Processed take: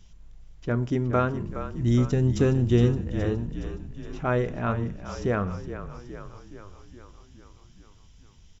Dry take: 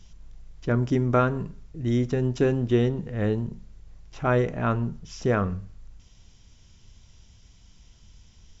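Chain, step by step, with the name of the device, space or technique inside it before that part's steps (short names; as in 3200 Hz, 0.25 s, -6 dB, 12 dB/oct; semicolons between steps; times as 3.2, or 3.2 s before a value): 1.48–2.97 tone controls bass +7 dB, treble +9 dB; exciter from parts (in parallel at -10 dB: HPF 4100 Hz 6 dB/oct + soft clip -32.5 dBFS, distortion -11 dB + HPF 4000 Hz 24 dB/oct); on the sum: frequency-shifting echo 0.417 s, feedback 63%, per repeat -33 Hz, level -11 dB; gain -2.5 dB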